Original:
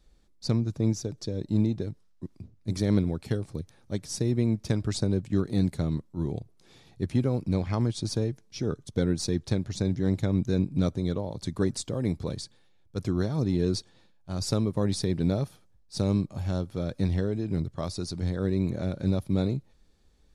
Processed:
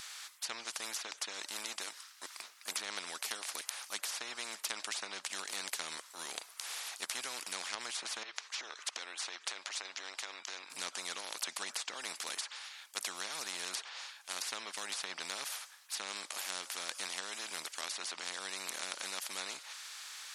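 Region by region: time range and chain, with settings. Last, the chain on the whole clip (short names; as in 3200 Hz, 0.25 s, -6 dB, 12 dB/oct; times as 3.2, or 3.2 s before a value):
8.23–10.7 LPF 5500 Hz + bell 2200 Hz +6.5 dB 1.9 oct + compressor 12:1, threshold -38 dBFS
whole clip: HPF 1200 Hz 24 dB/oct; treble ducked by the level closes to 2500 Hz, closed at -37.5 dBFS; spectral compressor 4:1; gain +14.5 dB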